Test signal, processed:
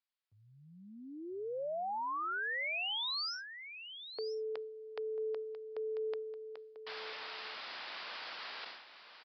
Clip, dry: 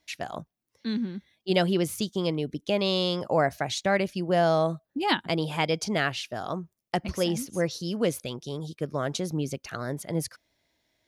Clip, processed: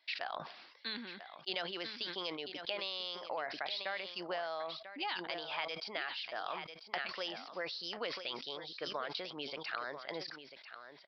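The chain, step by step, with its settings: high-pass 930 Hz 12 dB/octave; compression 10:1, threshold -39 dBFS; on a send: delay 993 ms -11.5 dB; on the sum: resampled via 11.025 kHz; decay stretcher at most 57 dB/s; trim +3 dB

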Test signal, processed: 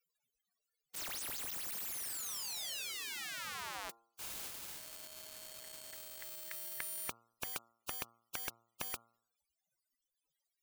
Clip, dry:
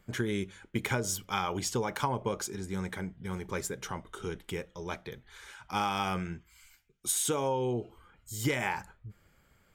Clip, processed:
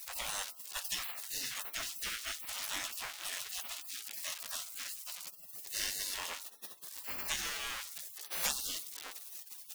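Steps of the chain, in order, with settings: jump at every zero crossing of -38 dBFS; spectral gate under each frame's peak -30 dB weak; de-hum 115.6 Hz, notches 12; trim +12 dB

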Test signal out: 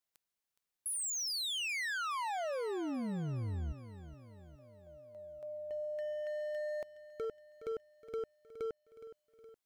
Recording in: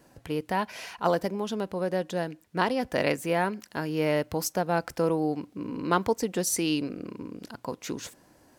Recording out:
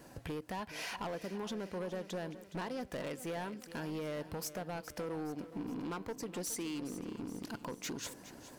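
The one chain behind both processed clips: compression 5:1, threshold -39 dBFS; hard clipper -38.5 dBFS; bit-crushed delay 417 ms, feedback 55%, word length 13-bit, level -13.5 dB; trim +3 dB

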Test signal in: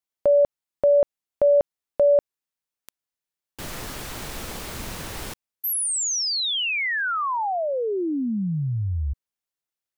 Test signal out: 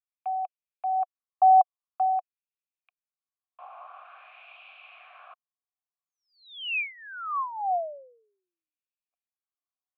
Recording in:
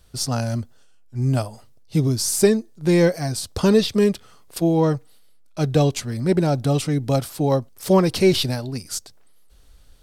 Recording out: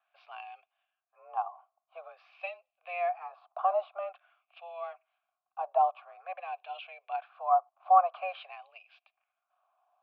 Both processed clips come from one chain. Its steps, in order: LFO band-pass sine 0.48 Hz 800–2500 Hz; mistuned SSB +180 Hz 390–3500 Hz; vowel filter a; trim +8 dB

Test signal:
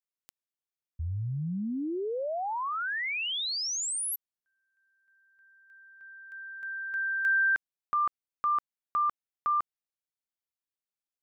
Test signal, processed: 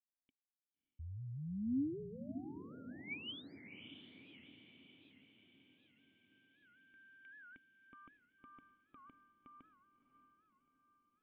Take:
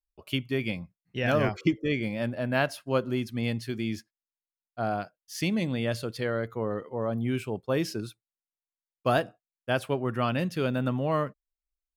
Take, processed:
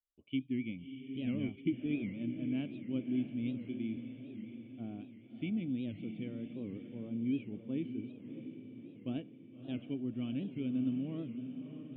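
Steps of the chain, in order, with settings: cascade formant filter i; echo that smears into a reverb 616 ms, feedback 57%, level -9 dB; warped record 78 rpm, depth 160 cents; trim -1.5 dB

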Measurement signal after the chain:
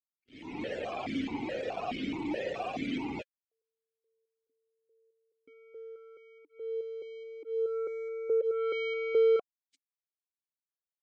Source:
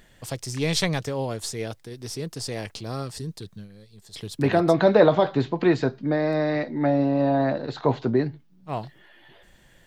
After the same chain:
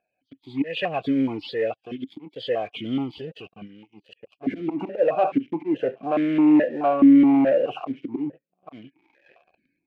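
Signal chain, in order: knee-point frequency compression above 1.4 kHz 1.5:1; peaking EQ 1.1 kHz -3.5 dB 1.2 oct; slow attack 349 ms; level rider gain up to 7 dB; loudest bins only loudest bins 64; waveshaping leveller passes 3; stepped vowel filter 4.7 Hz

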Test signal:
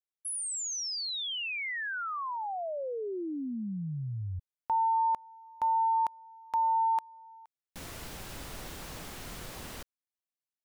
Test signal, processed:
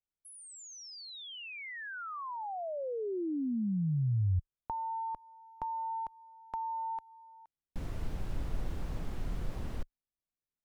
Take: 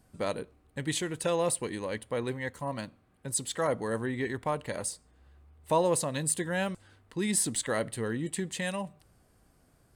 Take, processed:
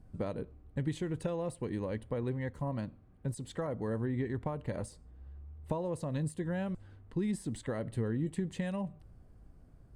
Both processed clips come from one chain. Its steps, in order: compression 6:1, threshold -32 dBFS; tilt EQ -3.5 dB/octave; trim -4 dB

